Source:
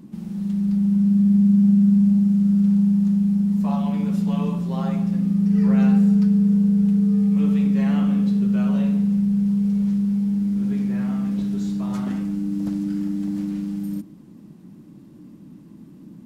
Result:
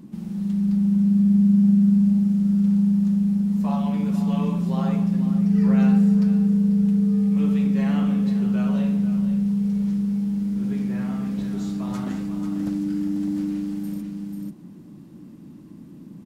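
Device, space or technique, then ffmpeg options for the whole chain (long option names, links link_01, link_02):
ducked delay: -filter_complex "[0:a]asplit=3[link_01][link_02][link_03];[link_02]adelay=491,volume=-4.5dB[link_04];[link_03]apad=whole_len=738492[link_05];[link_04][link_05]sidechaincompress=threshold=-25dB:ratio=8:attack=16:release=265[link_06];[link_01][link_06]amix=inputs=2:normalize=0"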